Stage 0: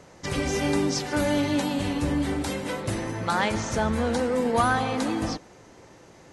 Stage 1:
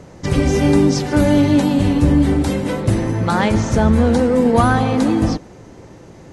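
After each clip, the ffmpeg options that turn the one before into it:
ffmpeg -i in.wav -af "lowshelf=frequency=460:gain=11.5,volume=3.5dB" out.wav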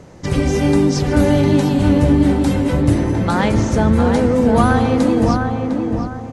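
ffmpeg -i in.wav -filter_complex "[0:a]asplit=2[link_01][link_02];[link_02]adelay=704,lowpass=frequency=1600:poles=1,volume=-3.5dB,asplit=2[link_03][link_04];[link_04]adelay=704,lowpass=frequency=1600:poles=1,volume=0.38,asplit=2[link_05][link_06];[link_06]adelay=704,lowpass=frequency=1600:poles=1,volume=0.38,asplit=2[link_07][link_08];[link_08]adelay=704,lowpass=frequency=1600:poles=1,volume=0.38,asplit=2[link_09][link_10];[link_10]adelay=704,lowpass=frequency=1600:poles=1,volume=0.38[link_11];[link_01][link_03][link_05][link_07][link_09][link_11]amix=inputs=6:normalize=0,volume=-1dB" out.wav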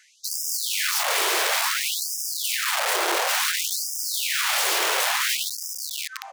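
ffmpeg -i in.wav -af "aeval=exprs='(mod(7.5*val(0)+1,2)-1)/7.5':channel_layout=same,afftfilt=real='re*gte(b*sr/1024,310*pow(5000/310,0.5+0.5*sin(2*PI*0.57*pts/sr)))':imag='im*gte(b*sr/1024,310*pow(5000/310,0.5+0.5*sin(2*PI*0.57*pts/sr)))':win_size=1024:overlap=0.75" out.wav

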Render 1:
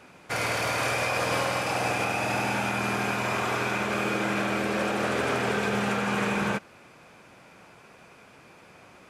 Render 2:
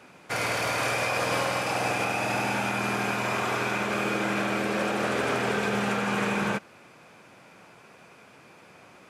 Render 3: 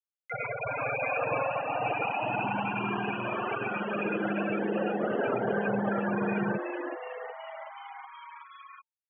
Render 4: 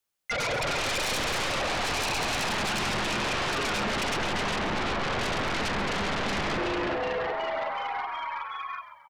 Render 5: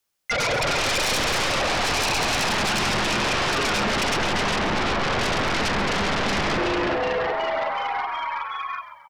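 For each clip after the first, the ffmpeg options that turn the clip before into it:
ffmpeg -i in.wav -af "highpass=95" out.wav
ffmpeg -i in.wav -filter_complex "[0:a]afftfilt=real='re*gte(hypot(re,im),0.126)':imag='im*gte(hypot(re,im),0.126)':win_size=1024:overlap=0.75,asplit=7[link_01][link_02][link_03][link_04][link_05][link_06][link_07];[link_02]adelay=372,afreqshift=150,volume=-6.5dB[link_08];[link_03]adelay=744,afreqshift=300,volume=-12.2dB[link_09];[link_04]adelay=1116,afreqshift=450,volume=-17.9dB[link_10];[link_05]adelay=1488,afreqshift=600,volume=-23.5dB[link_11];[link_06]adelay=1860,afreqshift=750,volume=-29.2dB[link_12];[link_07]adelay=2232,afreqshift=900,volume=-34.9dB[link_13];[link_01][link_08][link_09][link_10][link_11][link_12][link_13]amix=inputs=7:normalize=0,acompressor=mode=upward:threshold=-34dB:ratio=2.5" out.wav
ffmpeg -i in.wav -filter_complex "[0:a]aeval=exprs='(tanh(25.1*val(0)+0.25)-tanh(0.25))/25.1':channel_layout=same,aeval=exprs='0.0501*sin(PI/2*3.16*val(0)/0.0501)':channel_layout=same,asplit=2[link_01][link_02];[link_02]asplit=5[link_03][link_04][link_05][link_06][link_07];[link_03]adelay=134,afreqshift=-75,volume=-11.5dB[link_08];[link_04]adelay=268,afreqshift=-150,volume=-18.1dB[link_09];[link_05]adelay=402,afreqshift=-225,volume=-24.6dB[link_10];[link_06]adelay=536,afreqshift=-300,volume=-31.2dB[link_11];[link_07]adelay=670,afreqshift=-375,volume=-37.7dB[link_12];[link_08][link_09][link_10][link_11][link_12]amix=inputs=5:normalize=0[link_13];[link_01][link_13]amix=inputs=2:normalize=0" out.wav
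ffmpeg -i in.wav -af "equalizer=frequency=5300:width_type=o:width=0.37:gain=2.5,volume=5.5dB" out.wav

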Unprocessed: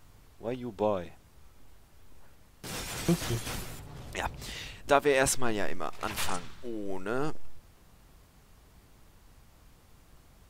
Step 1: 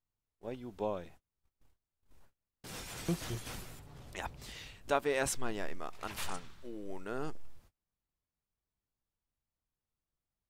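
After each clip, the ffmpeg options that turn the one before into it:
ffmpeg -i in.wav -af "agate=range=-28dB:threshold=-47dB:ratio=16:detection=peak,volume=-7.5dB" out.wav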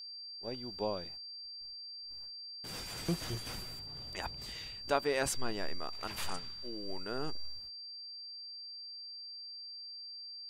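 ffmpeg -i in.wav -af "aeval=exprs='val(0)+0.00631*sin(2*PI*4700*n/s)':channel_layout=same" out.wav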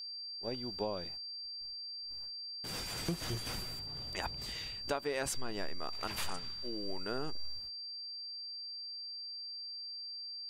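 ffmpeg -i in.wav -af "acompressor=threshold=-34dB:ratio=6,volume=2.5dB" out.wav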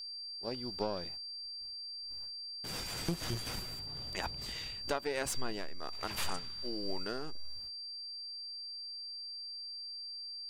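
ffmpeg -i in.wav -af "aeval=exprs='0.0944*(cos(1*acos(clip(val(0)/0.0944,-1,1)))-cos(1*PI/2))+0.0119*(cos(4*acos(clip(val(0)/0.0944,-1,1)))-cos(4*PI/2))':channel_layout=same" out.wav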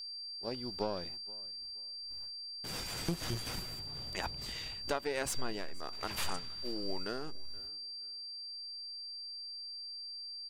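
ffmpeg -i in.wav -af "aecho=1:1:475|950:0.0708|0.017" out.wav

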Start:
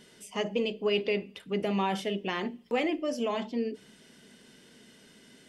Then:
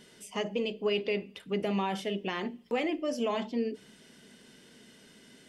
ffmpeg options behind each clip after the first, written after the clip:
ffmpeg -i in.wav -af "alimiter=limit=-20dB:level=0:latency=1:release=439" out.wav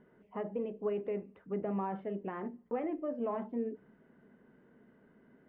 ffmpeg -i in.wav -af "lowpass=frequency=1500:width=0.5412,lowpass=frequency=1500:width=1.3066,volume=-4.5dB" out.wav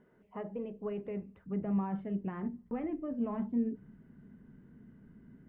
ffmpeg -i in.wav -af "asubboost=boost=11:cutoff=170,volume=-2dB" out.wav

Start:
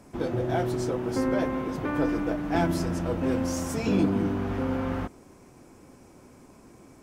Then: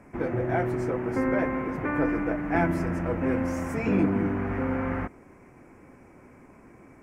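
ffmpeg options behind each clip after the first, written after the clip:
ffmpeg -i in.wav -af "highshelf=frequency=2800:width_type=q:width=3:gain=-9.5" out.wav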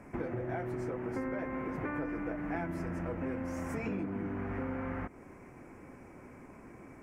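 ffmpeg -i in.wav -af "acompressor=threshold=-34dB:ratio=6" out.wav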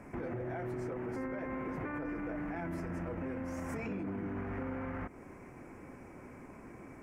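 ffmpeg -i in.wav -af "alimiter=level_in=8.5dB:limit=-24dB:level=0:latency=1:release=21,volume=-8.5dB,volume=1dB" out.wav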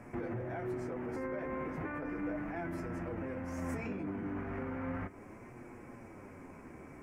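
ffmpeg -i in.wav -af "flanger=delay=8.3:depth=5.2:regen=49:speed=0.35:shape=sinusoidal,volume=4dB" out.wav

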